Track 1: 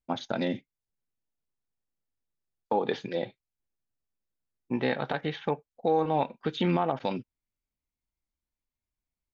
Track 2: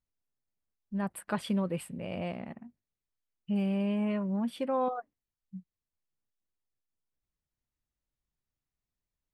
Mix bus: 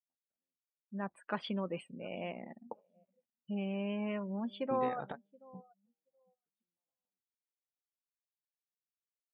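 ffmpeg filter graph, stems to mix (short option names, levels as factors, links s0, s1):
-filter_complex "[0:a]acompressor=threshold=0.0251:ratio=6,volume=0.531[s0];[1:a]highpass=230,adynamicequalizer=threshold=0.00631:dfrequency=1600:dqfactor=0.7:tfrequency=1600:tqfactor=0.7:attack=5:release=100:ratio=0.375:range=2:mode=boostabove:tftype=highshelf,volume=0.668,asplit=3[s1][s2][s3];[s2]volume=0.075[s4];[s3]apad=whole_len=411473[s5];[s0][s5]sidechaingate=range=0.0224:threshold=0.00141:ratio=16:detection=peak[s6];[s4]aecho=0:1:725|1450|2175|2900:1|0.27|0.0729|0.0197[s7];[s6][s1][s7]amix=inputs=3:normalize=0,lowpass=4900,afftdn=nr=28:nf=-50"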